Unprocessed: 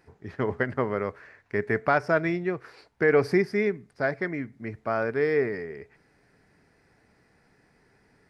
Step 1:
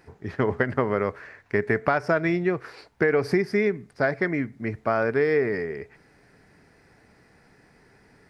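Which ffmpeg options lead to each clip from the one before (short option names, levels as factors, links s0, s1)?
-af "acompressor=threshold=0.0631:ratio=6,volume=2"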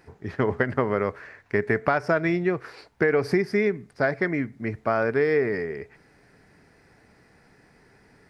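-af anull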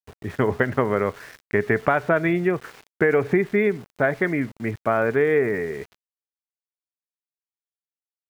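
-af "aresample=8000,aresample=44100,aeval=exprs='val(0)*gte(abs(val(0)),0.00668)':c=same,volume=1.33"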